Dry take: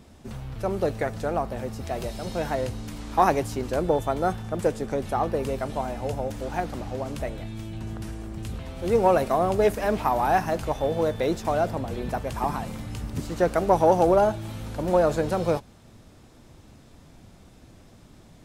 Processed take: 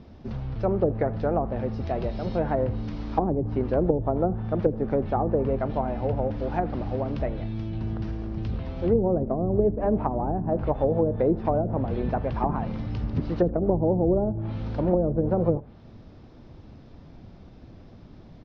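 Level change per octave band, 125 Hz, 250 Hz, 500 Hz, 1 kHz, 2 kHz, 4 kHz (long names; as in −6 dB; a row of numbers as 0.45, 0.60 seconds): +4.5 dB, +3.5 dB, −1.0 dB, −5.5 dB, −9.5 dB, below −10 dB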